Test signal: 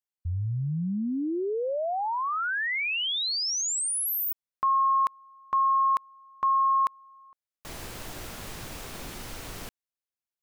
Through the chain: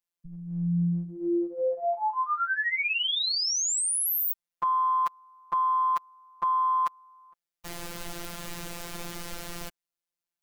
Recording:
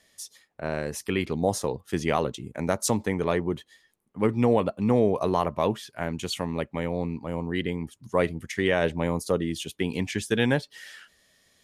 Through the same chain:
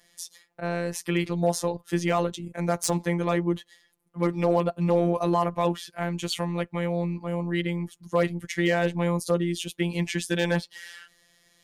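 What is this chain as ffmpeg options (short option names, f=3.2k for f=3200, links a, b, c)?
-af "acontrast=42,afftfilt=real='hypot(re,im)*cos(PI*b)':imag='0':win_size=1024:overlap=0.75,asoftclip=type=hard:threshold=-10.5dB,volume=-1dB"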